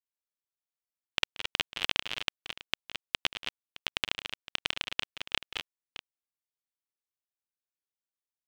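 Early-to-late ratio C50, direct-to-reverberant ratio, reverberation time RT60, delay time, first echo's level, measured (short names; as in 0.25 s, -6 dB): none, none, none, 0.18 s, -17.0 dB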